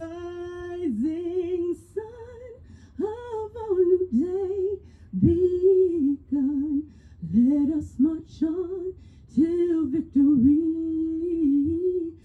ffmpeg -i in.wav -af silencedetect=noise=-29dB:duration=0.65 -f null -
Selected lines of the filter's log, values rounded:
silence_start: 2.01
silence_end: 2.99 | silence_duration: 0.98